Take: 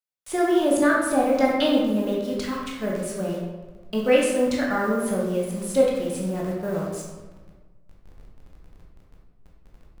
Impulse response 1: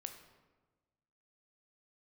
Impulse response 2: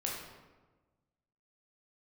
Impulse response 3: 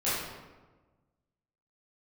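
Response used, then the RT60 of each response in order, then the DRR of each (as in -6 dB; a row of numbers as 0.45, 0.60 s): 2; 1.3, 1.3, 1.3 s; 5.5, -3.5, -12.5 dB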